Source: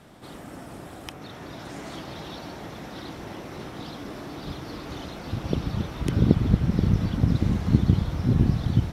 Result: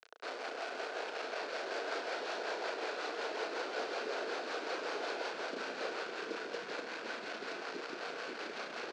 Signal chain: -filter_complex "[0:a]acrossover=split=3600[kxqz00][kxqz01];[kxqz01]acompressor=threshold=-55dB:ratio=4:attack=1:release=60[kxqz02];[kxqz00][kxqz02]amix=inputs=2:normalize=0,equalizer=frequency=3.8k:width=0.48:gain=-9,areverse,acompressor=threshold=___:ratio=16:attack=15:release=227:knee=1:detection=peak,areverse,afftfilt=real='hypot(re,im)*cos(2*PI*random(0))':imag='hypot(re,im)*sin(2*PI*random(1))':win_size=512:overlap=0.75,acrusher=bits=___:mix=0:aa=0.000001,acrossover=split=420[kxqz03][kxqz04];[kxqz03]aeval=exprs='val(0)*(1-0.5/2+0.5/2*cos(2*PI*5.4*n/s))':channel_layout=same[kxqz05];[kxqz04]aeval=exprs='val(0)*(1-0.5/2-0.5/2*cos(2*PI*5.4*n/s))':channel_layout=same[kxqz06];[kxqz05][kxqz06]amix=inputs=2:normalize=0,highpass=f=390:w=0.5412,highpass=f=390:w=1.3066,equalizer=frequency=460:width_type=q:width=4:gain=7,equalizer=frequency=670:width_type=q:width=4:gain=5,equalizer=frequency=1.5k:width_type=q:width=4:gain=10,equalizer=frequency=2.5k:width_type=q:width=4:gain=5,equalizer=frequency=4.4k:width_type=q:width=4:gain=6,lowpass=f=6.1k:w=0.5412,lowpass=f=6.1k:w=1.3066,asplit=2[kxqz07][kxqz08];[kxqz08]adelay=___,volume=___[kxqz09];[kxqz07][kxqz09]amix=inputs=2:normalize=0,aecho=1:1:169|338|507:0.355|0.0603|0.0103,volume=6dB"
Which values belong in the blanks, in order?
-30dB, 7, 34, -7dB